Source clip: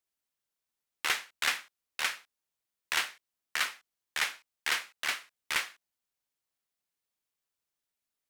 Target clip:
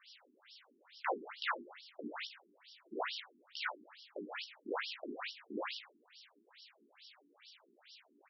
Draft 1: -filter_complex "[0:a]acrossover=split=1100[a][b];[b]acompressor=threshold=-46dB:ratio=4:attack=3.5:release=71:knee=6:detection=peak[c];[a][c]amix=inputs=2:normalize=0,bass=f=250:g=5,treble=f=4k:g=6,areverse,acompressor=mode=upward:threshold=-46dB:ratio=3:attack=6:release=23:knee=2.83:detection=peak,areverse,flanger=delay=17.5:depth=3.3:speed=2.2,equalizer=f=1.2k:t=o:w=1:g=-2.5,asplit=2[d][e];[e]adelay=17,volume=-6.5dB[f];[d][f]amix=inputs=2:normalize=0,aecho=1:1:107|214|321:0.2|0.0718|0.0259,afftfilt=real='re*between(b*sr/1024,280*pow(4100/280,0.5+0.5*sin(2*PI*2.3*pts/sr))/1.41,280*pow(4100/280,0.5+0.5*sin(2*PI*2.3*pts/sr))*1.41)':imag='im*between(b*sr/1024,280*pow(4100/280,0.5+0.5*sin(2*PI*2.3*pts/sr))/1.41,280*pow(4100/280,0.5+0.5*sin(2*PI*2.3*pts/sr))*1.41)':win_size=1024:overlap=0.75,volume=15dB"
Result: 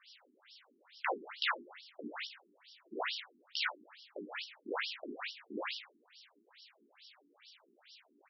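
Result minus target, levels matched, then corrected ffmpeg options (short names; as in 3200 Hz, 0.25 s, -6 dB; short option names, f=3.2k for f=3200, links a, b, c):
compressor: peak gain reduction -8.5 dB
-filter_complex "[0:a]acrossover=split=1100[a][b];[b]acompressor=threshold=-57.5dB:ratio=4:attack=3.5:release=71:knee=6:detection=peak[c];[a][c]amix=inputs=2:normalize=0,bass=f=250:g=5,treble=f=4k:g=6,areverse,acompressor=mode=upward:threshold=-46dB:ratio=3:attack=6:release=23:knee=2.83:detection=peak,areverse,flanger=delay=17.5:depth=3.3:speed=2.2,equalizer=f=1.2k:t=o:w=1:g=-2.5,asplit=2[d][e];[e]adelay=17,volume=-6.5dB[f];[d][f]amix=inputs=2:normalize=0,aecho=1:1:107|214|321:0.2|0.0718|0.0259,afftfilt=real='re*between(b*sr/1024,280*pow(4100/280,0.5+0.5*sin(2*PI*2.3*pts/sr))/1.41,280*pow(4100/280,0.5+0.5*sin(2*PI*2.3*pts/sr))*1.41)':imag='im*between(b*sr/1024,280*pow(4100/280,0.5+0.5*sin(2*PI*2.3*pts/sr))/1.41,280*pow(4100/280,0.5+0.5*sin(2*PI*2.3*pts/sr))*1.41)':win_size=1024:overlap=0.75,volume=15dB"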